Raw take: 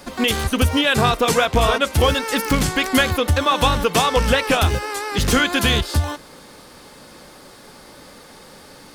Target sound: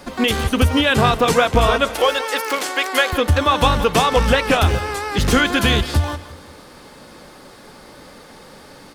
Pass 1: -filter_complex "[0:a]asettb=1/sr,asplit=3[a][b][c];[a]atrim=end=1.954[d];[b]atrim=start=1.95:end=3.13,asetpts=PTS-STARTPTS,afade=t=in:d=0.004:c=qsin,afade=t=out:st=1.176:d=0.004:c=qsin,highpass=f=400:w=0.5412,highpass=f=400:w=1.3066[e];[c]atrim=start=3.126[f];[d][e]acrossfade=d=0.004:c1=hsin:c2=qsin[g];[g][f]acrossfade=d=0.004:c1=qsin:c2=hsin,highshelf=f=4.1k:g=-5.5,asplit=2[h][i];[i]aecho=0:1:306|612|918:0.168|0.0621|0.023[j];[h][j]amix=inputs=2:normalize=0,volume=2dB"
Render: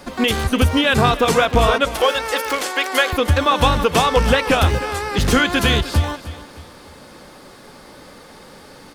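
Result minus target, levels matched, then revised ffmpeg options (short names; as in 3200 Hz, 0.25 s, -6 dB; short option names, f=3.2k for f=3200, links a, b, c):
echo 0.134 s late
-filter_complex "[0:a]asettb=1/sr,asplit=3[a][b][c];[a]atrim=end=1.954[d];[b]atrim=start=1.95:end=3.13,asetpts=PTS-STARTPTS,afade=t=in:d=0.004:c=qsin,afade=t=out:st=1.176:d=0.004:c=qsin,highpass=f=400:w=0.5412,highpass=f=400:w=1.3066[e];[c]atrim=start=3.126[f];[d][e]acrossfade=d=0.004:c1=hsin:c2=qsin[g];[g][f]acrossfade=d=0.004:c1=qsin:c2=hsin,highshelf=f=4.1k:g=-5.5,asplit=2[h][i];[i]aecho=0:1:172|344|516:0.168|0.0621|0.023[j];[h][j]amix=inputs=2:normalize=0,volume=2dB"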